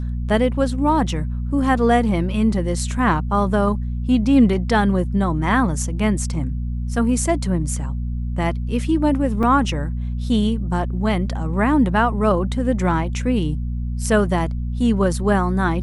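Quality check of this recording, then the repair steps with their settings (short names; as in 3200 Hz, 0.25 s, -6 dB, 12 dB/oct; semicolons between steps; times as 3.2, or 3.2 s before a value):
hum 60 Hz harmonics 4 -24 dBFS
9.43 gap 3.2 ms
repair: de-hum 60 Hz, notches 4; interpolate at 9.43, 3.2 ms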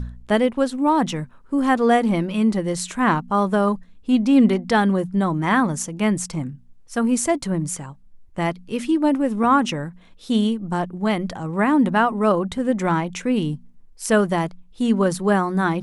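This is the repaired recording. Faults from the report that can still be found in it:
none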